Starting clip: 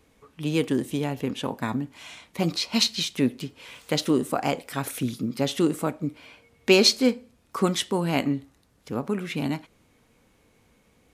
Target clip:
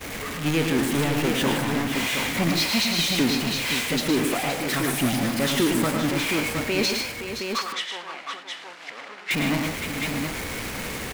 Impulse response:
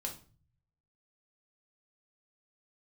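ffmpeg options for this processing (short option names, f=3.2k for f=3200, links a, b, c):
-filter_complex "[0:a]aeval=exprs='val(0)+0.5*0.112*sgn(val(0))':c=same,equalizer=f=2k:t=o:w=0.95:g=5.5,alimiter=limit=-12.5dB:level=0:latency=1:release=124,asettb=1/sr,asplit=3[a][b][c];[a]atrim=end=7.014[d];[b]atrim=start=7.01:end=9.31,asetpts=PTS-STARTPTS,afade=t=in:d=0.004:c=qsin,afade=t=out:st=2.296:d=0.004:c=qsin,highpass=740,lowpass=4.5k[e];[c]atrim=start=9.306[f];[d][e]acrossfade=d=0.004:c1=hsin:c2=qsin[g];[g][f]acrossfade=d=0.004:c1=qsin:c2=hsin,agate=range=-33dB:threshold=-17dB:ratio=3:detection=peak,aecho=1:1:109|153|519|717:0.501|0.335|0.335|0.531"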